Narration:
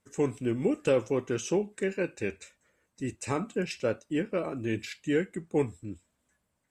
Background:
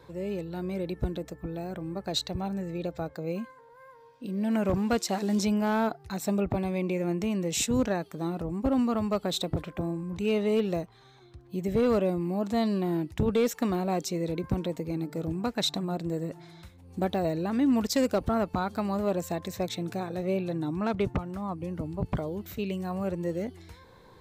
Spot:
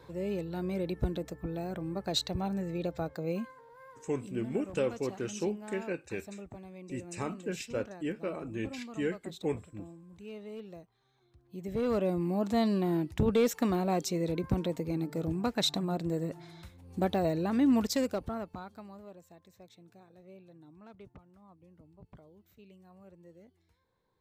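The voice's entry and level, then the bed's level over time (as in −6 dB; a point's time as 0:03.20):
3.90 s, −5.5 dB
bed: 0:04.01 −1 dB
0:04.52 −18 dB
0:11.03 −18 dB
0:12.21 −1 dB
0:17.77 −1 dB
0:19.22 −24 dB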